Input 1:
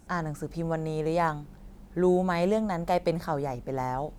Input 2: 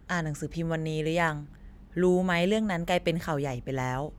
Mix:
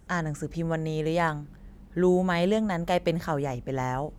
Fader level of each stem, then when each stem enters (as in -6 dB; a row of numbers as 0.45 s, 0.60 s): -6.5 dB, -2.5 dB; 0.00 s, 0.00 s